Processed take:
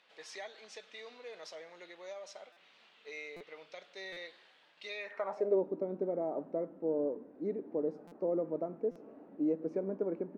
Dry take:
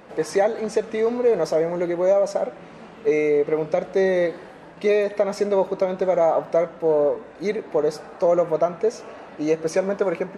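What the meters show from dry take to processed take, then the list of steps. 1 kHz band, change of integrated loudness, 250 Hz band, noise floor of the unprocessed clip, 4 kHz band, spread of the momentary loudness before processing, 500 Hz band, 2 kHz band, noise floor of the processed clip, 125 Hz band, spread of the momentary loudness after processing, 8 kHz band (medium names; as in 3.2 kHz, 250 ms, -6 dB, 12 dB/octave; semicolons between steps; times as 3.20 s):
-20.0 dB, -15.5 dB, -11.0 dB, -43 dBFS, -10.0 dB, 8 LU, -17.0 dB, -15.0 dB, -64 dBFS, -16.0 dB, 16 LU, no reading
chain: band-pass sweep 3.5 kHz -> 280 Hz, 4.94–5.62 s; buffer glitch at 2.52/3.36/4.12/8.07/8.91 s, samples 256, times 7; trim -5 dB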